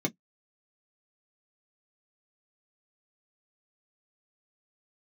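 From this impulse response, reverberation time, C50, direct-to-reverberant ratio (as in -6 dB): not exponential, 34.0 dB, 1.5 dB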